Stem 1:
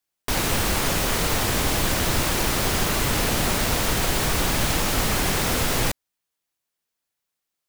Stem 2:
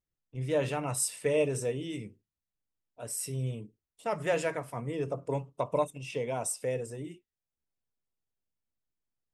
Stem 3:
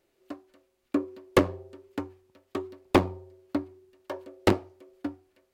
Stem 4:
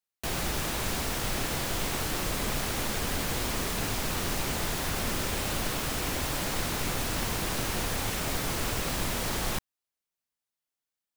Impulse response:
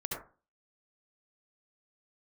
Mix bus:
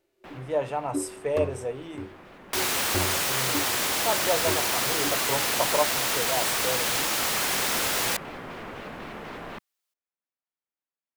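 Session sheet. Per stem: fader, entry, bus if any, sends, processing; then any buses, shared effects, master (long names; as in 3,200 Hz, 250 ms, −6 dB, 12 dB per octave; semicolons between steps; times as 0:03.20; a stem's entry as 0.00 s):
−0.5 dB, 2.25 s, no send, high-pass filter 820 Hz 6 dB per octave
−6.0 dB, 0.00 s, no send, parametric band 810 Hz +14 dB 1.4 octaves
+2.0 dB, 0.00 s, no send, harmonic and percussive parts rebalanced percussive −17 dB
−3.5 dB, 0.00 s, no send, three-way crossover with the lows and the highs turned down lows −14 dB, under 160 Hz, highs −24 dB, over 2,800 Hz; pitch modulation by a square or saw wave square 4 Hz, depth 160 cents; automatic ducking −10 dB, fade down 0.50 s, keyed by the second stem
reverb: not used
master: no processing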